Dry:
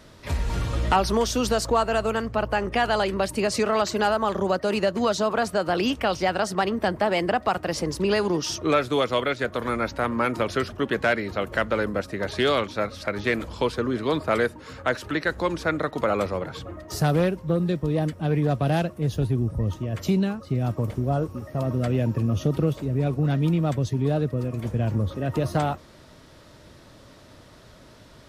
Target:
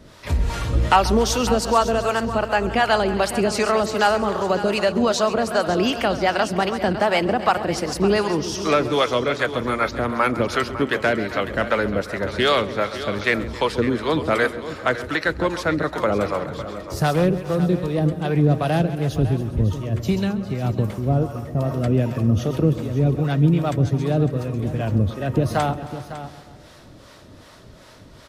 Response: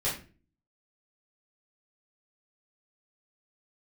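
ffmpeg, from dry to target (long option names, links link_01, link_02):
-filter_complex "[0:a]asplit=2[link_01][link_02];[link_02]aecho=0:1:135|270|405|540|675|810:0.224|0.132|0.0779|0.046|0.0271|0.016[link_03];[link_01][link_03]amix=inputs=2:normalize=0,acrossover=split=530[link_04][link_05];[link_04]aeval=exprs='val(0)*(1-0.7/2+0.7/2*cos(2*PI*2.6*n/s))':channel_layout=same[link_06];[link_05]aeval=exprs='val(0)*(1-0.7/2-0.7/2*cos(2*PI*2.6*n/s))':channel_layout=same[link_07];[link_06][link_07]amix=inputs=2:normalize=0,asplit=2[link_08][link_09];[link_09]aecho=0:1:554:0.224[link_10];[link_08][link_10]amix=inputs=2:normalize=0,volume=6.5dB"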